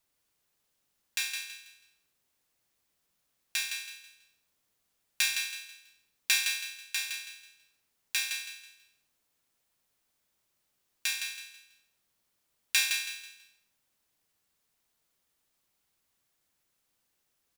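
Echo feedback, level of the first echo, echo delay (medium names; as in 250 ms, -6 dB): 32%, -6.5 dB, 163 ms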